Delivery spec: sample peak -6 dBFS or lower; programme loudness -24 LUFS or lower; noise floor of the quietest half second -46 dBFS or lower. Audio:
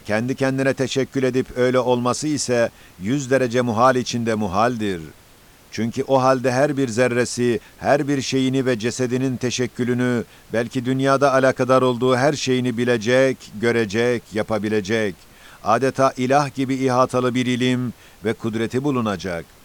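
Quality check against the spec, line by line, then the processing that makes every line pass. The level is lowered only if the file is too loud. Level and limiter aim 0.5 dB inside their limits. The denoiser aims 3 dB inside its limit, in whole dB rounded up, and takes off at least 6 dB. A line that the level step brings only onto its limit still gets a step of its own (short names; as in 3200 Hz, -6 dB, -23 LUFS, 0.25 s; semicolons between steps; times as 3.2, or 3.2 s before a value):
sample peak -4.0 dBFS: fail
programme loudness -20.0 LUFS: fail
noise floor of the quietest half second -49 dBFS: OK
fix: gain -4.5 dB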